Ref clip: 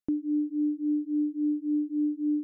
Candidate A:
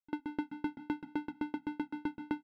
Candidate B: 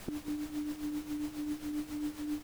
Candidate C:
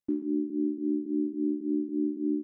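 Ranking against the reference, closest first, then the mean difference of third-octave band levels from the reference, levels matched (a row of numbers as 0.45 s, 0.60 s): C, A, B; 4.0 dB, 13.5 dB, 20.5 dB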